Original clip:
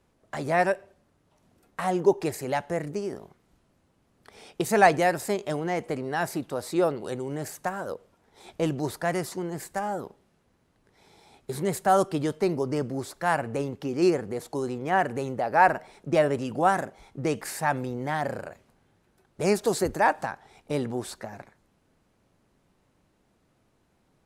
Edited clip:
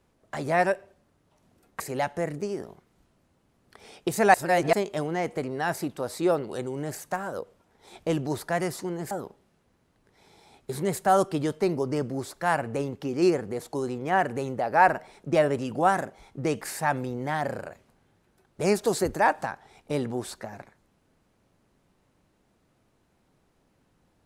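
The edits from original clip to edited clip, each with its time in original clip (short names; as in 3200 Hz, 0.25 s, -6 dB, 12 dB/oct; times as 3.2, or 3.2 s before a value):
1.8–2.33 cut
4.87–5.26 reverse
9.64–9.91 cut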